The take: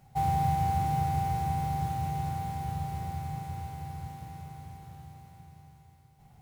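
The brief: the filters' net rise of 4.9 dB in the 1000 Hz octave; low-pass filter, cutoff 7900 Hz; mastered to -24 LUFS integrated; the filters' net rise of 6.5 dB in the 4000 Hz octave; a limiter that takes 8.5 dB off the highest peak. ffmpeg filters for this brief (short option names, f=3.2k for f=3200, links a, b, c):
-af "lowpass=7.9k,equalizer=f=1k:t=o:g=7,equalizer=f=4k:t=o:g=8,volume=8dB,alimiter=limit=-15dB:level=0:latency=1"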